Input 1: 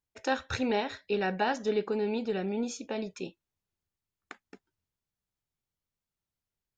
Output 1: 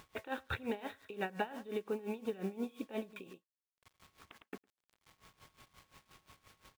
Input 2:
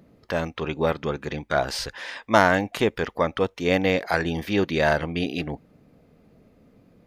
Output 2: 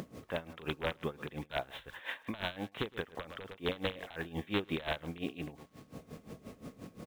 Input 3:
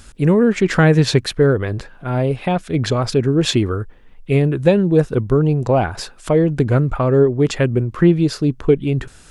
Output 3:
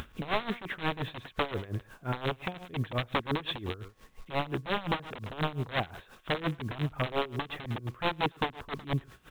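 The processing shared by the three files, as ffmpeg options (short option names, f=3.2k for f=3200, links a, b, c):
-filter_complex "[0:a]highpass=f=53:p=1,acompressor=mode=upward:threshold=-19dB:ratio=2.5,alimiter=limit=-11dB:level=0:latency=1:release=154,aeval=exprs='val(0)+0.00251*sin(2*PI*1100*n/s)':c=same,aresample=8000,aeval=exprs='(mod(4.22*val(0)+1,2)-1)/4.22':c=same,aresample=44100,acrusher=bits=7:mix=0:aa=0.000001,asplit=2[a][b];[b]aecho=0:1:107:0.15[c];[a][c]amix=inputs=2:normalize=0,aeval=exprs='val(0)*pow(10,-18*(0.5-0.5*cos(2*PI*5.7*n/s))/20)':c=same,volume=-8dB"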